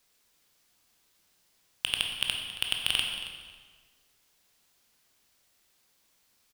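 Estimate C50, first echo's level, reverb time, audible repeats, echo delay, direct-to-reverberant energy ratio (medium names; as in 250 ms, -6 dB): 3.5 dB, -14.5 dB, 1.5 s, 1, 274 ms, 1.0 dB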